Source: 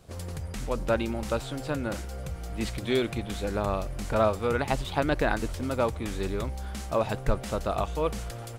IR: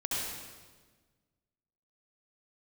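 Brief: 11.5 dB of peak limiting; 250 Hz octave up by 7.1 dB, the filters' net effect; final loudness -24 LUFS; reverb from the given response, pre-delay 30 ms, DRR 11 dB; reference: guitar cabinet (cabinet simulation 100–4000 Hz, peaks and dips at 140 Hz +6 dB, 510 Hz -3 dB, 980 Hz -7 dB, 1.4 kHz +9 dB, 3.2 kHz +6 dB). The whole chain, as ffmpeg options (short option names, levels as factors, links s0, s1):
-filter_complex "[0:a]equalizer=f=250:t=o:g=8.5,alimiter=limit=0.1:level=0:latency=1,asplit=2[s0][s1];[1:a]atrim=start_sample=2205,adelay=30[s2];[s1][s2]afir=irnorm=-1:irlink=0,volume=0.141[s3];[s0][s3]amix=inputs=2:normalize=0,highpass=100,equalizer=f=140:t=q:w=4:g=6,equalizer=f=510:t=q:w=4:g=-3,equalizer=f=980:t=q:w=4:g=-7,equalizer=f=1400:t=q:w=4:g=9,equalizer=f=3200:t=q:w=4:g=6,lowpass=f=4000:w=0.5412,lowpass=f=4000:w=1.3066,volume=2.11"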